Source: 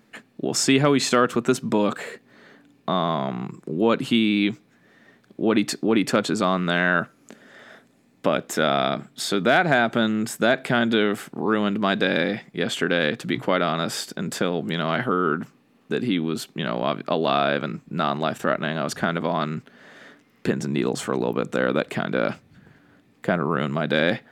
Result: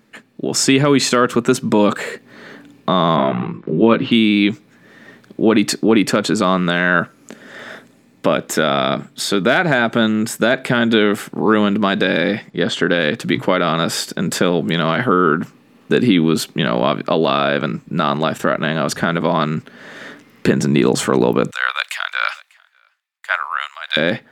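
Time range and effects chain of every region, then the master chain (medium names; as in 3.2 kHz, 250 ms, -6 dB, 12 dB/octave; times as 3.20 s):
3.16–4.12 s: low-pass 3.6 kHz 24 dB/octave + doubling 18 ms -2.5 dB
12.50–12.94 s: low-pass 6.1 kHz + peaking EQ 2.4 kHz -9 dB 0.3 oct
21.51–23.97 s: Bessel high-pass 1.5 kHz, order 8 + delay 596 ms -18.5 dB + three bands expanded up and down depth 100%
whole clip: band-stop 720 Hz, Q 12; level rider; loudness maximiser +3.5 dB; trim -1 dB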